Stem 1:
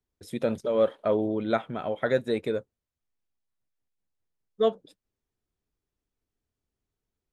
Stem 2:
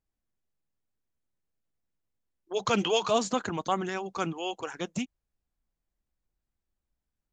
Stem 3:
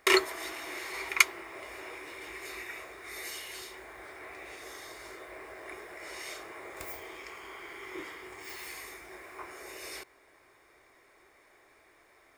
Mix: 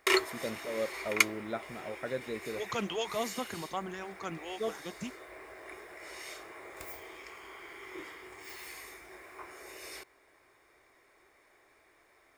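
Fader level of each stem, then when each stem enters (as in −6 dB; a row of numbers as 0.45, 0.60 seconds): −11.5, −8.5, −3.0 decibels; 0.00, 0.05, 0.00 seconds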